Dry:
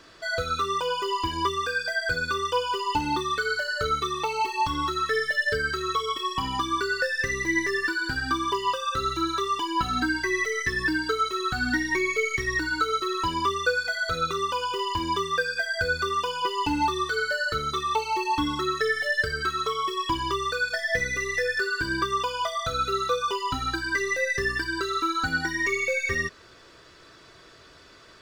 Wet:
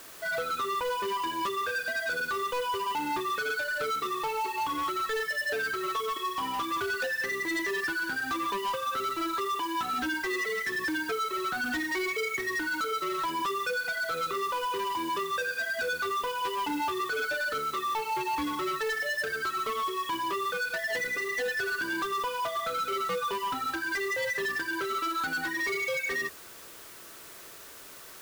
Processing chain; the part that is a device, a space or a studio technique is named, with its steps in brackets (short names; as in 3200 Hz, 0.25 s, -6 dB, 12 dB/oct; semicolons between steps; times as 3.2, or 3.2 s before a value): aircraft radio (BPF 300–2500 Hz; hard clip -28 dBFS, distortion -9 dB; white noise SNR 17 dB)